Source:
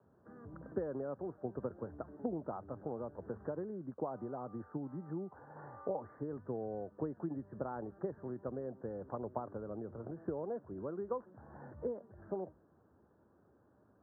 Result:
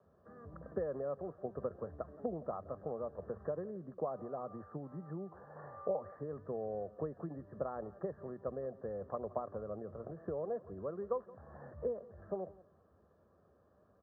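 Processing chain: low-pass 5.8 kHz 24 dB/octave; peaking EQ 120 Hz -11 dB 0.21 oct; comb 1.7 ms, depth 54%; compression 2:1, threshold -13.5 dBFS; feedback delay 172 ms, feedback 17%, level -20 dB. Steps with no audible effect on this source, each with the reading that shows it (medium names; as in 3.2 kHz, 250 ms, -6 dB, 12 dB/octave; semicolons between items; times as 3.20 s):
low-pass 5.8 kHz: input has nothing above 1.6 kHz; compression, threshold -13.5 dBFS: peak at its input -23.5 dBFS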